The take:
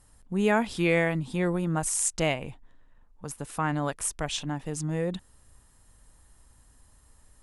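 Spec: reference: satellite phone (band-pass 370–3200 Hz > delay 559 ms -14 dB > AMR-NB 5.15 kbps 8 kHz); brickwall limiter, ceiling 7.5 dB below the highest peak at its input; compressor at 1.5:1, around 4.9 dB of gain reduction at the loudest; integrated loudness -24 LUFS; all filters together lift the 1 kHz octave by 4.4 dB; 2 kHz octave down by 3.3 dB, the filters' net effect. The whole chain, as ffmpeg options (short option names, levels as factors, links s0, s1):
-af "equalizer=f=1000:t=o:g=7,equalizer=f=2000:t=o:g=-5.5,acompressor=threshold=0.0316:ratio=1.5,alimiter=limit=0.0891:level=0:latency=1,highpass=370,lowpass=3200,aecho=1:1:559:0.2,volume=5.01" -ar 8000 -c:a libopencore_amrnb -b:a 5150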